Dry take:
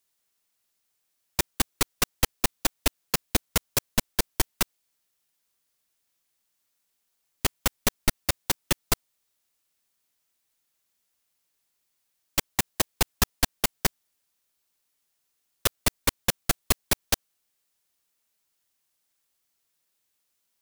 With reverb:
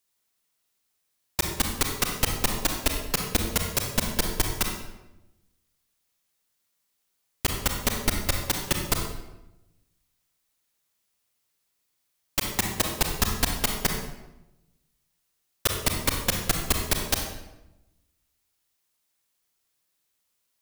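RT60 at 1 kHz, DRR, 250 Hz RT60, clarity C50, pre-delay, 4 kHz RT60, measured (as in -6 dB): 0.90 s, 2.5 dB, 1.2 s, 4.0 dB, 32 ms, 0.70 s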